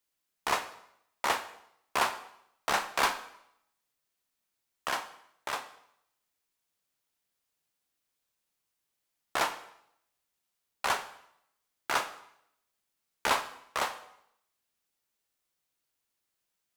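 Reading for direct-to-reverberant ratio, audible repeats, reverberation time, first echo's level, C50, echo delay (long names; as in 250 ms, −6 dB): 9.0 dB, no echo audible, 0.75 s, no echo audible, 13.0 dB, no echo audible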